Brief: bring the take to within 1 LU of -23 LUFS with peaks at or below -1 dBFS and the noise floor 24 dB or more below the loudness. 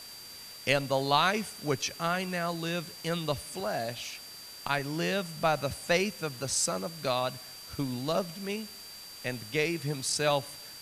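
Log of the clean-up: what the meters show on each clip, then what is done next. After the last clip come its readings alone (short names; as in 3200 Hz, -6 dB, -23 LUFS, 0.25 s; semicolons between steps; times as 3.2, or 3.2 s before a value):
steady tone 4700 Hz; tone level -46 dBFS; noise floor -46 dBFS; noise floor target -55 dBFS; loudness -31.0 LUFS; peak -9.5 dBFS; loudness target -23.0 LUFS
-> notch 4700 Hz, Q 30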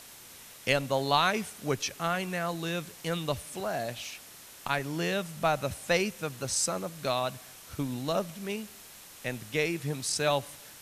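steady tone none; noise floor -50 dBFS; noise floor target -55 dBFS
-> denoiser 6 dB, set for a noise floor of -50 dBFS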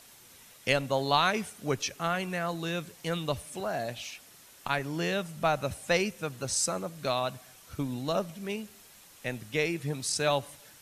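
noise floor -55 dBFS; loudness -31.0 LUFS; peak -9.5 dBFS; loudness target -23.0 LUFS
-> gain +8 dB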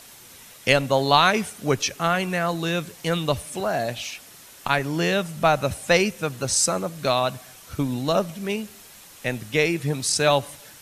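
loudness -23.0 LUFS; peak -1.5 dBFS; noise floor -47 dBFS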